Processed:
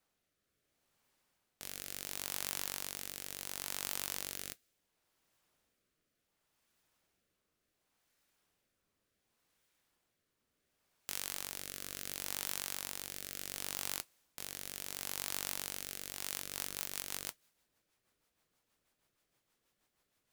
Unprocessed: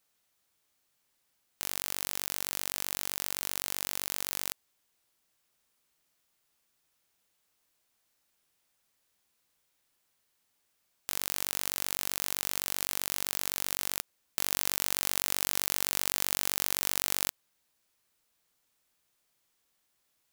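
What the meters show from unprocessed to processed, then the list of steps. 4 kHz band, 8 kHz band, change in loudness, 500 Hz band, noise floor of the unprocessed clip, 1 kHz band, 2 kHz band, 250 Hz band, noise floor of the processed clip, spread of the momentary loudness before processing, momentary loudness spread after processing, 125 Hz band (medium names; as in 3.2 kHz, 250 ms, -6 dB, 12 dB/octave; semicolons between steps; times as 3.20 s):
-8.0 dB, -8.0 dB, -9.0 dB, -7.5 dB, -76 dBFS, -9.0 dB, -8.0 dB, -6.5 dB, -84 dBFS, 6 LU, 7 LU, -6.5 dB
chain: saturation -14 dBFS, distortion -14 dB; modulation noise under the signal 11 dB; rotary cabinet horn 0.7 Hz, later 6.3 Hz, at 15.97 s; tape noise reduction on one side only decoder only; trim +4.5 dB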